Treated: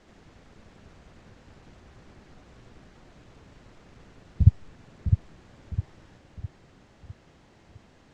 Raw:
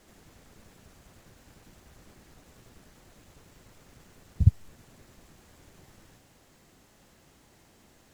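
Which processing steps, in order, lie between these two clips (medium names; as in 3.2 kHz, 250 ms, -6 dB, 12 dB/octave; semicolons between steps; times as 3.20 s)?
distance through air 120 m; on a send: filtered feedback delay 657 ms, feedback 43%, level -6 dB; on the sum: trim +3 dB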